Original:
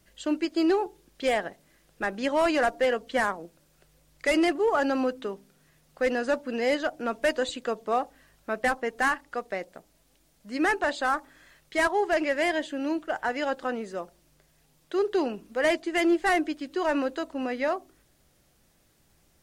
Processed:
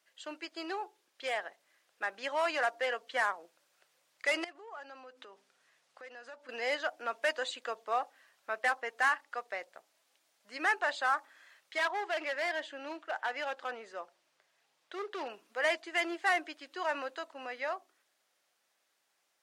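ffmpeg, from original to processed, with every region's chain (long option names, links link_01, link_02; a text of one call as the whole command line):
ffmpeg -i in.wav -filter_complex "[0:a]asettb=1/sr,asplit=3[link_01][link_02][link_03];[link_01]atrim=end=4.444[link_04];[link_02]atrim=start=4.44:end=6.49,asetpts=PTS-STARTPTS,afade=type=in:duration=0.004:curve=qsin,afade=type=out:start_time=2.046:duration=0.004:curve=qsin,lowpass=9800,acompressor=threshold=-40dB:ratio=4:attack=3.2:release=140:knee=1:detection=peak[link_05];[link_03]atrim=start=6.486[link_06];[link_04][link_05]acrossfade=duration=0.004:curve1=hsin:curve2=qsin[link_07];[link_07][link_06]acrossfade=duration=0.004:curve1=qsin:curve2=hsin,asettb=1/sr,asplit=3[link_08][link_09][link_10];[link_08]atrim=end=11.784[link_11];[link_09]atrim=start=11.78:end=15.3,asetpts=PTS-STARTPTS,afade=type=in:duration=0.004:curve=qsin,afade=type=out:start_time=3.516:duration=0.004:curve=qsin,highshelf=frequency=8200:gain=-11,volume=23dB,asoftclip=hard,volume=-23dB[link_12];[link_10]atrim=start=15.296[link_13];[link_11][link_12]acrossfade=duration=0.004:curve1=hsin:curve2=qsin[link_14];[link_14][link_13]acrossfade=duration=0.004:curve1=qsin:curve2=hsin,highpass=790,highshelf=frequency=8100:gain=-10,dynaudnorm=framelen=270:gausssize=17:maxgain=3dB,volume=-5dB" out.wav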